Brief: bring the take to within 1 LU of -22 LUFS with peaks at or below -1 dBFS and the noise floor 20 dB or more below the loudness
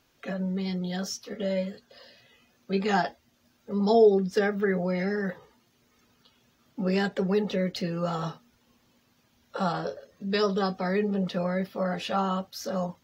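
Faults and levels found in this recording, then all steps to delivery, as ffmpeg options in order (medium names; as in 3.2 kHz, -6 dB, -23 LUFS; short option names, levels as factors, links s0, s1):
loudness -28.0 LUFS; peak level -9.5 dBFS; loudness target -22.0 LUFS
-> -af "volume=2"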